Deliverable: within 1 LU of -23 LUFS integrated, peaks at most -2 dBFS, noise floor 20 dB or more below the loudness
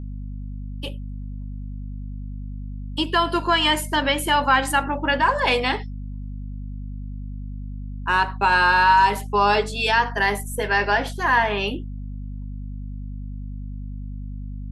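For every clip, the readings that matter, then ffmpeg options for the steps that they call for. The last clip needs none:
hum 50 Hz; harmonics up to 250 Hz; hum level -29 dBFS; loudness -20.0 LUFS; peak -6.0 dBFS; loudness target -23.0 LUFS
-> -af "bandreject=f=50:t=h:w=4,bandreject=f=100:t=h:w=4,bandreject=f=150:t=h:w=4,bandreject=f=200:t=h:w=4,bandreject=f=250:t=h:w=4"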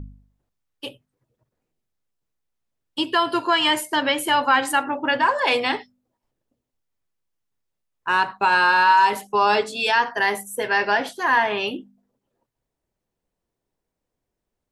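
hum none; loudness -20.0 LUFS; peak -6.5 dBFS; loudness target -23.0 LUFS
-> -af "volume=-3dB"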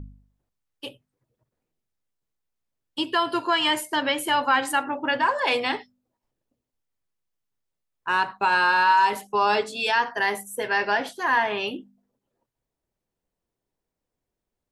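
loudness -23.0 LUFS; peak -9.5 dBFS; noise floor -85 dBFS

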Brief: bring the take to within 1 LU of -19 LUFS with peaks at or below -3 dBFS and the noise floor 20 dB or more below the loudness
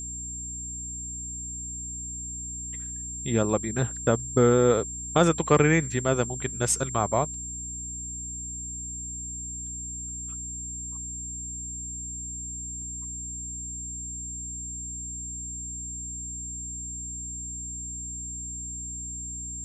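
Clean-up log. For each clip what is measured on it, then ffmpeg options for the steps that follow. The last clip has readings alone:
hum 60 Hz; harmonics up to 300 Hz; hum level -39 dBFS; steady tone 7400 Hz; tone level -34 dBFS; loudness -29.0 LUFS; peak -6.0 dBFS; loudness target -19.0 LUFS
-> -af "bandreject=f=60:t=h:w=6,bandreject=f=120:t=h:w=6,bandreject=f=180:t=h:w=6,bandreject=f=240:t=h:w=6,bandreject=f=300:t=h:w=6"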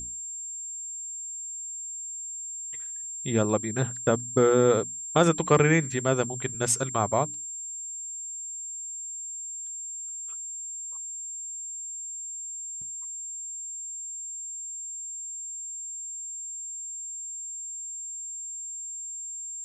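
hum none; steady tone 7400 Hz; tone level -34 dBFS
-> -af "bandreject=f=7.4k:w=30"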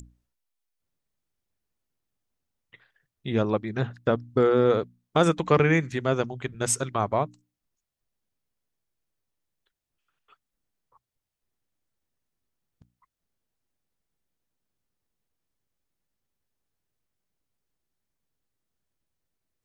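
steady tone none; loudness -25.0 LUFS; peak -6.0 dBFS; loudness target -19.0 LUFS
-> -af "volume=6dB,alimiter=limit=-3dB:level=0:latency=1"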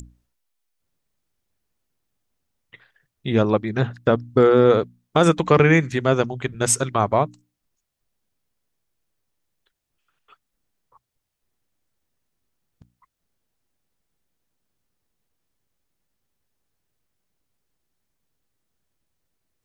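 loudness -19.0 LUFS; peak -3.0 dBFS; noise floor -79 dBFS

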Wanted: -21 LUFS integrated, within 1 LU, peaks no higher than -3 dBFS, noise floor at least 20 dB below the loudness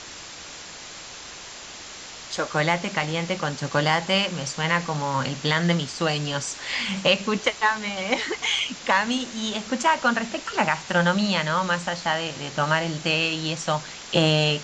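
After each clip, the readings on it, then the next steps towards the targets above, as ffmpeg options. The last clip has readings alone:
noise floor -40 dBFS; noise floor target -44 dBFS; loudness -24.0 LUFS; peak -4.5 dBFS; loudness target -21.0 LUFS
-> -af "afftdn=nr=6:nf=-40"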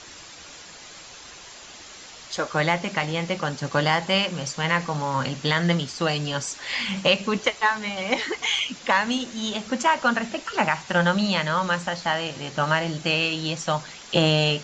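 noise floor -44 dBFS; loudness -24.0 LUFS; peak -4.5 dBFS; loudness target -21.0 LUFS
-> -af "volume=3dB,alimiter=limit=-3dB:level=0:latency=1"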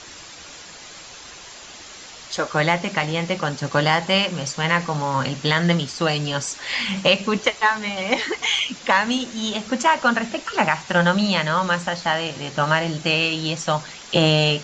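loudness -21.0 LUFS; peak -3.0 dBFS; noise floor -41 dBFS

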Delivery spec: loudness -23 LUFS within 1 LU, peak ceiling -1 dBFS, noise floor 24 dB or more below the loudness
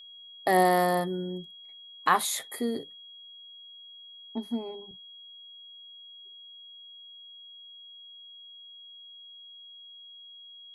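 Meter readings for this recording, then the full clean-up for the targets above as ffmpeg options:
steady tone 3300 Hz; tone level -46 dBFS; loudness -28.0 LUFS; peak -10.5 dBFS; loudness target -23.0 LUFS
-> -af "bandreject=f=3.3k:w=30"
-af "volume=5dB"

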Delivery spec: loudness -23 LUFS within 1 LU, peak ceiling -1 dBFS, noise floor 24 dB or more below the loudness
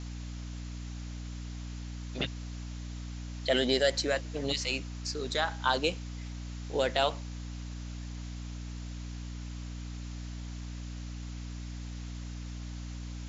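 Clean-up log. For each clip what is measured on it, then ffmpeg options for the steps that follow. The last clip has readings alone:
hum 60 Hz; harmonics up to 300 Hz; hum level -37 dBFS; noise floor -40 dBFS; noise floor target -59 dBFS; loudness -35.0 LUFS; peak -13.0 dBFS; loudness target -23.0 LUFS
-> -af "bandreject=f=60:t=h:w=6,bandreject=f=120:t=h:w=6,bandreject=f=180:t=h:w=6,bandreject=f=240:t=h:w=6,bandreject=f=300:t=h:w=6"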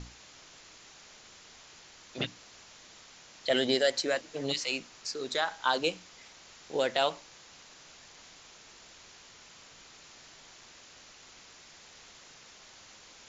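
hum none; noise floor -54 dBFS; noise floor target -55 dBFS
-> -af "afftdn=nr=6:nf=-54"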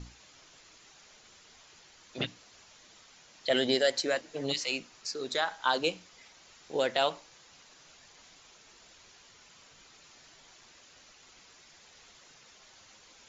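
noise floor -58 dBFS; loudness -31.0 LUFS; peak -13.5 dBFS; loudness target -23.0 LUFS
-> -af "volume=8dB"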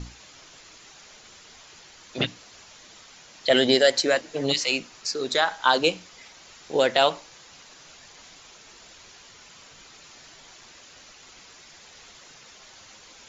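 loudness -23.0 LUFS; peak -5.5 dBFS; noise floor -50 dBFS

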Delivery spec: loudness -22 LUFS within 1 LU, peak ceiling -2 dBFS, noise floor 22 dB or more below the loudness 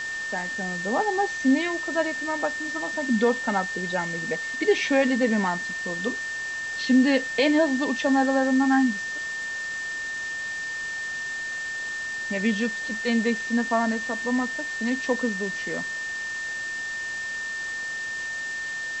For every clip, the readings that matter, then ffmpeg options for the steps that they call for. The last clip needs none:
steady tone 1800 Hz; tone level -29 dBFS; noise floor -32 dBFS; noise floor target -48 dBFS; loudness -25.5 LUFS; peak -9.5 dBFS; loudness target -22.0 LUFS
-> -af "bandreject=f=1.8k:w=30"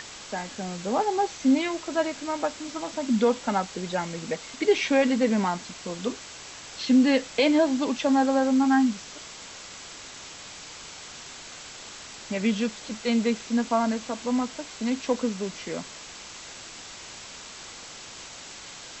steady tone none; noise floor -43 dBFS; noise floor target -48 dBFS
-> -af "afftdn=nr=6:nf=-43"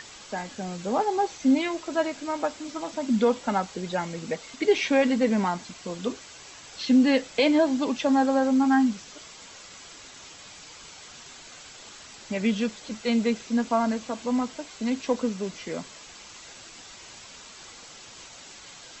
noise floor -46 dBFS; noise floor target -48 dBFS
-> -af "afftdn=nr=6:nf=-46"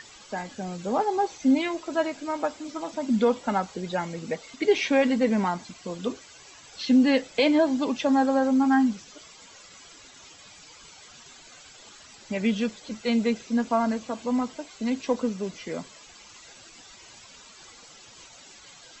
noise floor -50 dBFS; loudness -26.0 LUFS; peak -10.0 dBFS; loudness target -22.0 LUFS
-> -af "volume=4dB"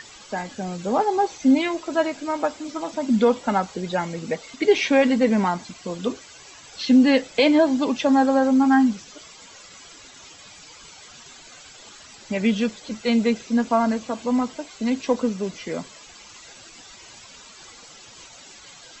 loudness -22.0 LUFS; peak -6.0 dBFS; noise floor -46 dBFS

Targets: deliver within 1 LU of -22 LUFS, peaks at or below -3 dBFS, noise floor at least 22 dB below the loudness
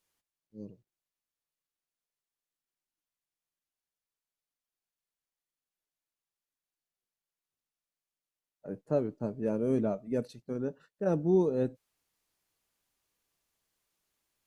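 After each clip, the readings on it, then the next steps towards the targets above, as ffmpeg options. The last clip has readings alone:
loudness -31.5 LUFS; peak -16.5 dBFS; loudness target -22.0 LUFS
-> -af "volume=9.5dB"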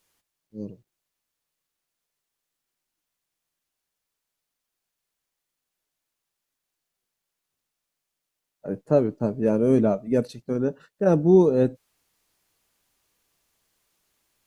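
loudness -22.5 LUFS; peak -7.0 dBFS; noise floor -84 dBFS

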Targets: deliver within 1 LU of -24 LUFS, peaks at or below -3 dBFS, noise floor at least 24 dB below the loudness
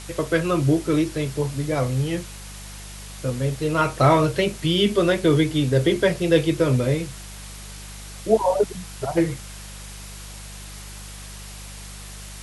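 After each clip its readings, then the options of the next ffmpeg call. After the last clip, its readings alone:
hum 50 Hz; harmonics up to 200 Hz; hum level -38 dBFS; noise floor -38 dBFS; noise floor target -46 dBFS; loudness -21.5 LUFS; peak -5.0 dBFS; loudness target -24.0 LUFS
-> -af "bandreject=f=50:t=h:w=4,bandreject=f=100:t=h:w=4,bandreject=f=150:t=h:w=4,bandreject=f=200:t=h:w=4"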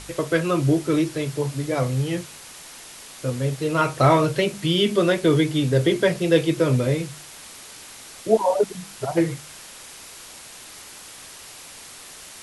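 hum none; noise floor -42 dBFS; noise floor target -46 dBFS
-> -af "afftdn=nr=6:nf=-42"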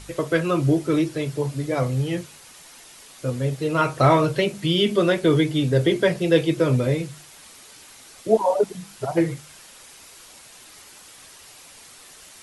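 noise floor -47 dBFS; loudness -22.0 LUFS; peak -5.0 dBFS; loudness target -24.0 LUFS
-> -af "volume=-2dB"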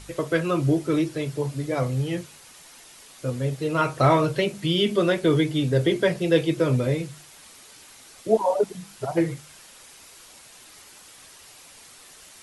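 loudness -24.0 LUFS; peak -7.0 dBFS; noise floor -49 dBFS

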